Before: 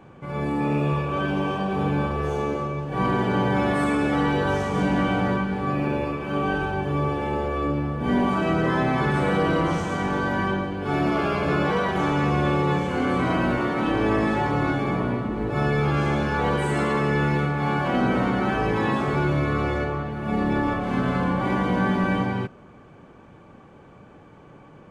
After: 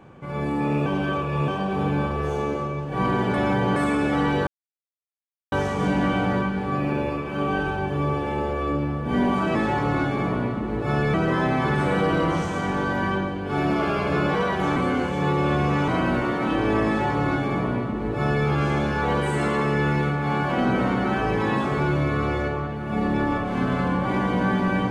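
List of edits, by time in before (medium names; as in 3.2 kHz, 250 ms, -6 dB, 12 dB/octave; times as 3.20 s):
0.86–1.48 s: reverse
3.34–3.76 s: reverse
4.47 s: insert silence 1.05 s
12.12–13.24 s: reverse
14.23–15.82 s: copy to 8.50 s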